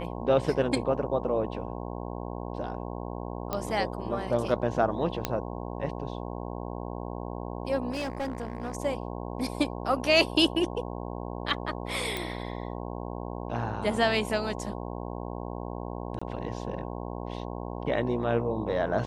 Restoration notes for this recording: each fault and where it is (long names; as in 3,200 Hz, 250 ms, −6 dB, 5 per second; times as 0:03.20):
mains buzz 60 Hz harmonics 18 −36 dBFS
0:03.53: click −15 dBFS
0:05.25: click −10 dBFS
0:07.91–0:08.77: clipping −28 dBFS
0:12.17: click
0:16.19–0:16.21: drop-out 25 ms